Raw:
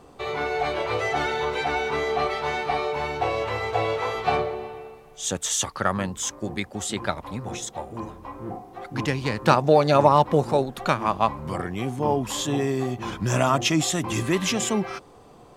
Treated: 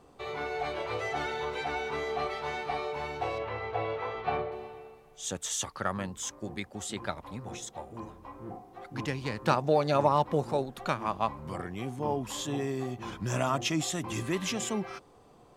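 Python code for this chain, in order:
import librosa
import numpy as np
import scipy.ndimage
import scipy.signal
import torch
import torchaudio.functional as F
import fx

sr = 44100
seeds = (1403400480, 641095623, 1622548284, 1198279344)

y = fx.lowpass(x, sr, hz=2900.0, slope=12, at=(3.38, 4.52))
y = y * 10.0 ** (-8.0 / 20.0)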